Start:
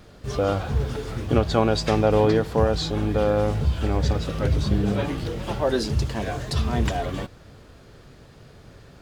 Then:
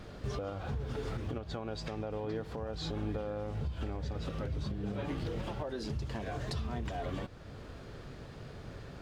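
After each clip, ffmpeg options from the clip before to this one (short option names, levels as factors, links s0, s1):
-af "highshelf=f=6400:g=-9.5,acompressor=threshold=0.0398:ratio=6,alimiter=level_in=1.68:limit=0.0631:level=0:latency=1:release=468,volume=0.596,volume=1.12"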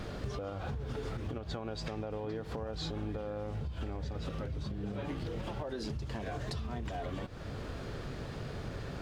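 -af "acompressor=threshold=0.00794:ratio=6,volume=2.24"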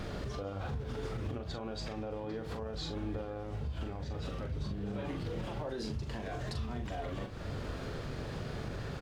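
-filter_complex "[0:a]alimiter=level_in=2.37:limit=0.0631:level=0:latency=1:release=75,volume=0.422,asplit=2[s0][s1];[s1]adelay=41,volume=0.473[s2];[s0][s2]amix=inputs=2:normalize=0,volume=1.12"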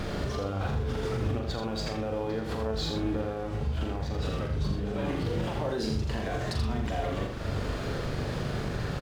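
-af "aeval=exprs='sgn(val(0))*max(abs(val(0))-0.00112,0)':c=same,aecho=1:1:82:0.531,volume=2.37"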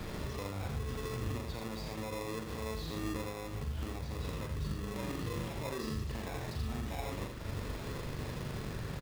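-filter_complex "[0:a]acrossover=split=150|910[s0][s1][s2];[s1]acrusher=samples=29:mix=1:aa=0.000001[s3];[s2]asoftclip=type=tanh:threshold=0.0119[s4];[s0][s3][s4]amix=inputs=3:normalize=0,acrusher=bits=6:mode=log:mix=0:aa=0.000001,volume=0.422"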